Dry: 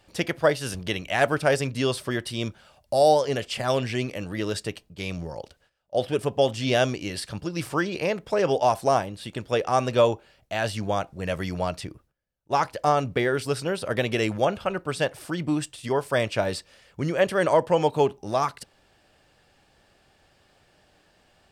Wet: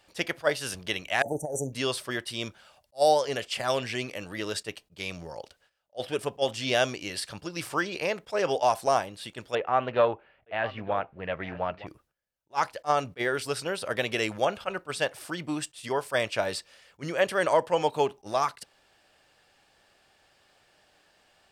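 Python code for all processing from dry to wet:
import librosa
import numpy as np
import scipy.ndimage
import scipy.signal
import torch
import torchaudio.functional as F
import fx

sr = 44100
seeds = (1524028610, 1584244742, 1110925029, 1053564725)

y = fx.chain(x, sr, fx.brickwall_bandstop(low_hz=910.0, high_hz=5800.0),
    fx.over_compress(threshold_db=-24.0, ratio=-0.5), at=(1.22, 1.73))
y = fx.chain(y, sr, fx.lowpass(hz=2500.0, slope=24),
    fx.echo_single(ms=912, db=-17.0),
    fx.doppler_dist(depth_ms=0.15), at=(9.55, 11.87))
y = fx.low_shelf(y, sr, hz=370.0, db=-11.0)
y = fx.attack_slew(y, sr, db_per_s=490.0)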